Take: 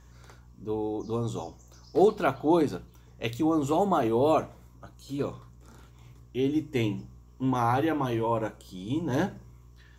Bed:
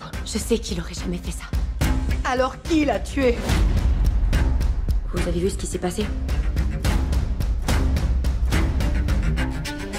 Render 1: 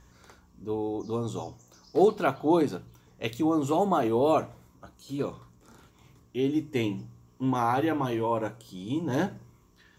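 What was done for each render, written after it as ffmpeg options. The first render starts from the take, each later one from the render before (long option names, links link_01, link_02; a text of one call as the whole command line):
ffmpeg -i in.wav -af "bandreject=frequency=60:width_type=h:width=4,bandreject=frequency=120:width_type=h:width=4" out.wav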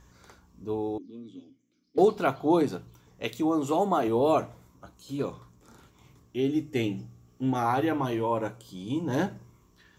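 ffmpeg -i in.wav -filter_complex "[0:a]asettb=1/sr,asplit=3[link_01][link_02][link_03];[link_01]atrim=end=0.984[link_04];[link_02]atrim=start=0.98:end=1.98,asetpts=PTS-STARTPTS,afade=type=in:duration=0.004:curve=qsin,afade=type=out:start_time=0.996:duration=0.004:curve=qsin,asplit=3[link_05][link_06][link_07];[link_05]bandpass=frequency=270:width_type=q:width=8,volume=0dB[link_08];[link_06]bandpass=frequency=2290:width_type=q:width=8,volume=-6dB[link_09];[link_07]bandpass=frequency=3010:width_type=q:width=8,volume=-9dB[link_10];[link_08][link_09][link_10]amix=inputs=3:normalize=0[link_11];[link_03]atrim=start=1.976[link_12];[link_04][link_11]acrossfade=duration=0.004:curve1=hsin:curve2=qsin[link_13];[link_13][link_12]acrossfade=duration=0.004:curve1=qsin:curve2=hsin,asettb=1/sr,asplit=3[link_14][link_15][link_16];[link_14]atrim=end=3.244[link_17];[link_15]atrim=start=3.24:end=4.08,asetpts=PTS-STARTPTS,afade=type=in:duration=0.004:curve=qsin,afade=type=out:start_time=0.836:duration=0.004:curve=qsin,equalizer=frequency=81:width=1.5:gain=-15[link_18];[link_16]atrim=start=4.076[link_19];[link_17][link_18]acrossfade=duration=0.004:curve1=hsin:curve2=qsin[link_20];[link_20][link_19]acrossfade=duration=0.004:curve1=qsin:curve2=hsin,asettb=1/sr,asplit=3[link_21][link_22][link_23];[link_21]atrim=end=6.424[link_24];[link_22]atrim=start=6.42:end=7.66,asetpts=PTS-STARTPTS,afade=type=in:duration=0.004:curve=qsin,afade=type=out:start_time=1.236:duration=0.004:curve=qsin,asuperstop=centerf=1000:order=8:qfactor=5.4[link_25];[link_23]atrim=start=7.656[link_26];[link_24][link_25]acrossfade=duration=0.004:curve1=hsin:curve2=qsin[link_27];[link_27][link_26]acrossfade=duration=0.004:curve1=qsin:curve2=hsin" out.wav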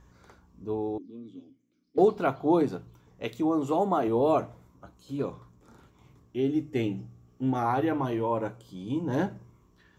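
ffmpeg -i in.wav -af "highshelf=frequency=2600:gain=-8.5" out.wav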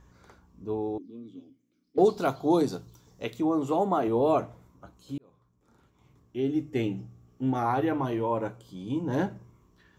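ffmpeg -i in.wav -filter_complex "[0:a]asettb=1/sr,asplit=3[link_01][link_02][link_03];[link_01]atrim=end=2.054[link_04];[link_02]atrim=start=2.05:end=3.24,asetpts=PTS-STARTPTS,afade=type=in:duration=0.004:curve=qsin,afade=type=out:start_time=1.186:duration=0.004:curve=qsin,highshelf=frequency=3400:width_type=q:width=1.5:gain=9.5[link_05];[link_03]atrim=start=3.236[link_06];[link_04][link_05]acrossfade=duration=0.004:curve1=hsin:curve2=qsin[link_07];[link_07][link_06]acrossfade=duration=0.004:curve1=qsin:curve2=hsin,asplit=2[link_08][link_09];[link_08]atrim=end=5.18,asetpts=PTS-STARTPTS,afade=type=out:start_time=5.176:duration=0.004:curve=hsin[link_10];[link_09]atrim=start=5.18,asetpts=PTS-STARTPTS,afade=type=in:duration=1.45[link_11];[link_10][link_11]concat=n=2:v=0:a=1" out.wav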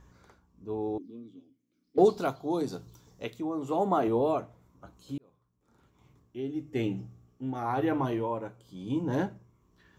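ffmpeg -i in.wav -af "tremolo=f=1:d=0.57" out.wav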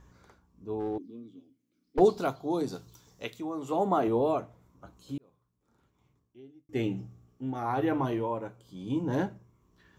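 ffmpeg -i in.wav -filter_complex "[0:a]asplit=3[link_01][link_02][link_03];[link_01]afade=type=out:start_time=0.79:duration=0.02[link_04];[link_02]aeval=exprs='clip(val(0),-1,0.0282)':channel_layout=same,afade=type=in:start_time=0.79:duration=0.02,afade=type=out:start_time=1.99:duration=0.02[link_05];[link_03]afade=type=in:start_time=1.99:duration=0.02[link_06];[link_04][link_05][link_06]amix=inputs=3:normalize=0,asettb=1/sr,asplit=3[link_07][link_08][link_09];[link_07]atrim=end=2.754[link_10];[link_08]atrim=start=2.75:end=3.72,asetpts=PTS-STARTPTS,afade=type=in:duration=0.004:curve=qsin,afade=type=out:start_time=0.966:duration=0.004:curve=qsin,tiltshelf=frequency=970:gain=-3.5[link_11];[link_09]atrim=start=3.716[link_12];[link_10][link_11]acrossfade=duration=0.004:curve1=hsin:curve2=qsin[link_13];[link_13][link_12]acrossfade=duration=0.004:curve1=qsin:curve2=hsin,asplit=2[link_14][link_15];[link_14]atrim=end=6.69,asetpts=PTS-STARTPTS,afade=type=out:start_time=5.15:duration=1.54[link_16];[link_15]atrim=start=6.69,asetpts=PTS-STARTPTS,afade=type=in:duration=0.004:curve=hsin[link_17];[link_16][link_17]concat=n=2:v=0:a=1" out.wav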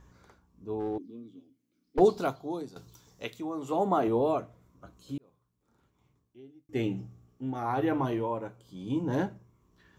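ffmpeg -i in.wav -filter_complex "[0:a]asettb=1/sr,asplit=3[link_01][link_02][link_03];[link_01]atrim=end=4.384[link_04];[link_02]atrim=start=4.38:end=5.16,asetpts=PTS-STARTPTS,afade=type=in:duration=0.004:curve=qsin,afade=type=out:start_time=0.776:duration=0.004:curve=qsin,bandreject=frequency=850:width=5.8[link_05];[link_03]atrim=start=5.156[link_06];[link_04][link_05]acrossfade=duration=0.004:curve1=hsin:curve2=qsin[link_07];[link_07][link_06]acrossfade=duration=0.004:curve1=qsin:curve2=hsin,asplit=2[link_08][link_09];[link_08]atrim=end=2.76,asetpts=PTS-STARTPTS,afade=type=out:start_time=2.27:duration=0.49:silence=0.16788[link_10];[link_09]atrim=start=2.76,asetpts=PTS-STARTPTS,afade=type=in:duration=0.004:curve=hsin:silence=0.16788[link_11];[link_10][link_11]concat=n=2:v=0:a=1" out.wav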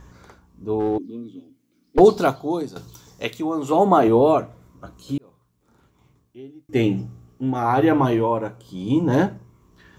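ffmpeg -i in.wav -af "volume=11dB,alimiter=limit=-3dB:level=0:latency=1" out.wav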